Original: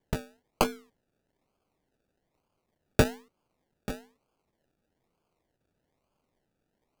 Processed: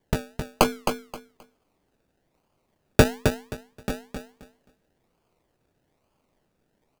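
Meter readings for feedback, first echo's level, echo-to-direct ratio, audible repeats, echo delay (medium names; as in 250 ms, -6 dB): 21%, -6.5 dB, -6.5 dB, 3, 264 ms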